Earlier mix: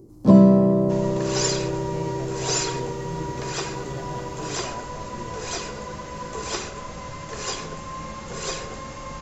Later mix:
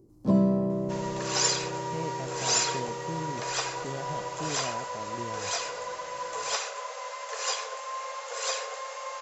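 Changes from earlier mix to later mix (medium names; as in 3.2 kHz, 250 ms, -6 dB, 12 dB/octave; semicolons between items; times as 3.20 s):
first sound -10.0 dB; second sound: add steep high-pass 460 Hz 96 dB/octave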